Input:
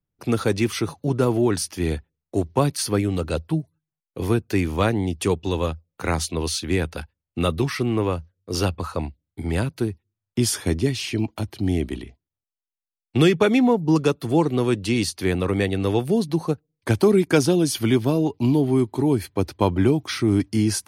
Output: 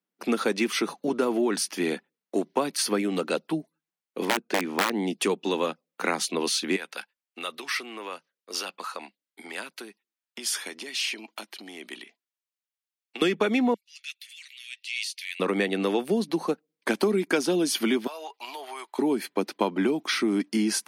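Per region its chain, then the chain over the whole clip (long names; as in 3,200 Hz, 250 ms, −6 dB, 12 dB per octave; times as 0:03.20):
0:04.25–0:04.94: low-pass filter 9,700 Hz + high-shelf EQ 3,100 Hz −8.5 dB + wrap-around overflow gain 12 dB
0:06.76–0:13.22: downward compressor, threshold −22 dBFS + high-pass filter 1,500 Hz 6 dB per octave
0:13.74–0:15.40: Butterworth high-pass 2,100 Hz 48 dB per octave + high-shelf EQ 3,500 Hz −7 dB + transient designer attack −8 dB, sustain +4 dB
0:18.07–0:18.99: high-pass filter 720 Hz 24 dB per octave + downward compressor 5 to 1, threshold −35 dBFS
whole clip: elliptic high-pass filter 200 Hz, stop band 60 dB; parametric band 2,100 Hz +5 dB 2.2 octaves; downward compressor 4 to 1, threshold −21 dBFS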